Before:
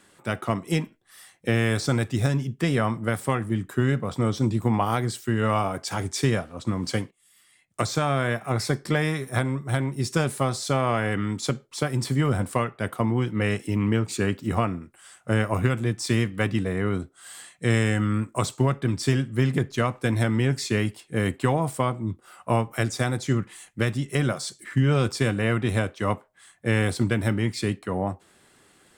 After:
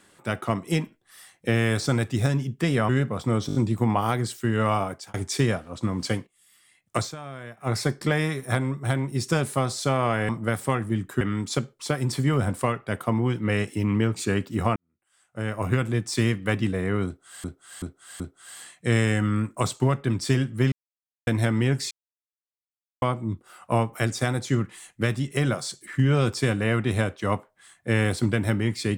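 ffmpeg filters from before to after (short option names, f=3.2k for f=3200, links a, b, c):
-filter_complex "[0:a]asplit=19[a][b][c][d][e][f][g][h][i][j][k][l][m][n][o][p][q][r][s];[a]atrim=end=2.892[t];[b]atrim=start=3.808:end=4.412[u];[c]atrim=start=4.388:end=4.412[v];[d]atrim=start=4.388:end=4.412[w];[e]atrim=start=4.388:end=4.412[x];[f]atrim=start=4.388:end=5.98,asetpts=PTS-STARTPTS,afade=t=out:st=1.282:d=0.31[y];[g]atrim=start=5.98:end=8,asetpts=PTS-STARTPTS,afade=t=in:d=0.004:c=hsin,afade=t=out:st=1.9:d=0.12:c=qua:silence=0.188365[z];[h]atrim=start=8:end=8.41,asetpts=PTS-STARTPTS,volume=-14.5dB[aa];[i]atrim=start=8.41:end=11.132,asetpts=PTS-STARTPTS,afade=t=in:d=0.12:c=qua:silence=0.188365[ab];[j]atrim=start=2.888:end=3.812[ac];[k]atrim=start=11.128:end=14.68,asetpts=PTS-STARTPTS,afade=t=out:st=3.548:d=0.004:c=hsin[ad];[l]atrim=start=14.68:end=17.362,asetpts=PTS-STARTPTS,afade=t=in:d=1.02:c=qua[ae];[m]atrim=start=16.978:end=17.362[af];[n]atrim=start=16.978:end=17.362[ag];[o]atrim=start=16.978:end=19.5,asetpts=PTS-STARTPTS,afade=t=out:st=2.518:d=0.004:c=hsin[ah];[p]atrim=start=19.5:end=20.05,asetpts=PTS-STARTPTS,volume=0[ai];[q]atrim=start=20.05:end=20.69,asetpts=PTS-STARTPTS,afade=t=in:d=0.004:c=hsin,afade=t=out:st=0.636:d=0.004:c=hsin[aj];[r]atrim=start=20.69:end=21.8,asetpts=PTS-STARTPTS,volume=0[ak];[s]atrim=start=21.8,asetpts=PTS-STARTPTS,afade=t=in:d=0.004:c=hsin[al];[t][u]acrossfade=d=0.004:c1=hsin:c2=hsin[am];[am][v]acrossfade=d=0.004:c1=hsin:c2=hsin[an];[an][w]acrossfade=d=0.004:c1=hsin:c2=hsin[ao];[ao][x]acrossfade=d=0.004:c1=hsin:c2=hsin[ap];[y][z][aa][ab]concat=n=4:v=0:a=1[aq];[ap][aq]acrossfade=d=0.004:c1=hsin:c2=hsin[ar];[ar][ac]acrossfade=d=0.004:c1=hsin:c2=hsin[as];[ad][ae]concat=n=2:v=0:a=1[at];[as][at]acrossfade=d=0.004:c1=hsin:c2=hsin[au];[au][af]acrossfade=d=0.004:c1=hsin:c2=hsin[av];[av][ag]acrossfade=d=0.004:c1=hsin:c2=hsin[aw];[ah][ai][aj][ak][al]concat=n=5:v=0:a=1[ax];[aw][ax]acrossfade=d=0.004:c1=hsin:c2=hsin"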